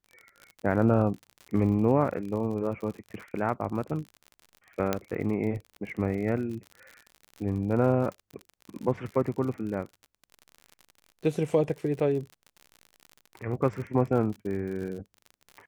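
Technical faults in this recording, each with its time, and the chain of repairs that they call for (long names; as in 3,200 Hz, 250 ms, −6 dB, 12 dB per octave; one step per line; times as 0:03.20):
surface crackle 53 per second −36 dBFS
0:04.93: click −11 dBFS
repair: click removal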